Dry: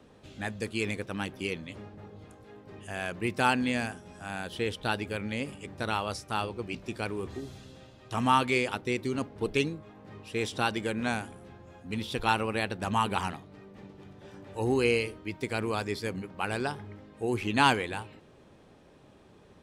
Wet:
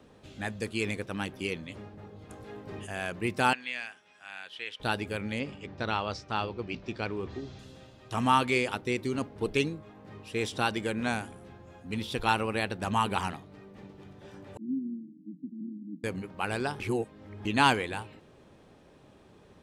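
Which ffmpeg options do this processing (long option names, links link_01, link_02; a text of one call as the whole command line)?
ffmpeg -i in.wav -filter_complex "[0:a]asplit=3[link_01][link_02][link_03];[link_01]afade=type=out:start_time=2.29:duration=0.02[link_04];[link_02]acontrast=56,afade=type=in:start_time=2.29:duration=0.02,afade=type=out:start_time=2.85:duration=0.02[link_05];[link_03]afade=type=in:start_time=2.85:duration=0.02[link_06];[link_04][link_05][link_06]amix=inputs=3:normalize=0,asettb=1/sr,asplit=3[link_07][link_08][link_09];[link_07]atrim=end=3.534[link_10];[link_08]atrim=start=3.53:end=4.8,asetpts=PTS-STARTPTS,afade=type=in:duration=0.004:curve=qsin,afade=type=out:start_time=1.266:duration=0.004:curve=qsin,bandpass=frequency=2500:width_type=q:width=1.3[link_11];[link_09]atrim=start=4.796[link_12];[link_10][link_11]acrossfade=duration=0.004:curve1=hsin:curve2=qsin[link_13];[link_13][link_12]acrossfade=duration=0.004:curve1=qsin:curve2=hsin,asettb=1/sr,asplit=3[link_14][link_15][link_16];[link_14]atrim=end=5.394[link_17];[link_15]atrim=start=5.39:end=7.59,asetpts=PTS-STARTPTS,afade=type=in:duration=0.004:curve=qsin,afade=type=out:start_time=2.196:duration=0.004:curve=qsin,lowpass=frequency=5700:width=0.5412,lowpass=frequency=5700:width=1.3066[link_18];[link_16]atrim=start=7.586[link_19];[link_17][link_18]acrossfade=duration=0.004:curve1=hsin:curve2=qsin[link_20];[link_20][link_19]acrossfade=duration=0.004:curve1=qsin:curve2=hsin,asettb=1/sr,asplit=3[link_21][link_22][link_23];[link_21]atrim=end=14.574[link_24];[link_22]atrim=start=14.57:end=16.04,asetpts=PTS-STARTPTS,afade=type=in:duration=0.004:curve=qsin,afade=type=out:start_time=1.466:duration=0.004:curve=qsin,asuperpass=centerf=220:order=12:qfactor=1.5[link_25];[link_23]atrim=start=16.036[link_26];[link_24][link_25]acrossfade=duration=0.004:curve1=hsin:curve2=qsin[link_27];[link_27][link_26]acrossfade=duration=0.004:curve1=qsin:curve2=hsin,asplit=3[link_28][link_29][link_30];[link_28]atrim=end=16.802[link_31];[link_29]atrim=start=16.798:end=17.452,asetpts=PTS-STARTPTS,areverse[link_32];[link_30]atrim=start=17.448[link_33];[link_31][link_32]acrossfade=duration=0.004:curve1=hsin:curve2=hsin[link_34];[link_34][link_33]acrossfade=duration=0.004:curve1=hsin:curve2=hsin" out.wav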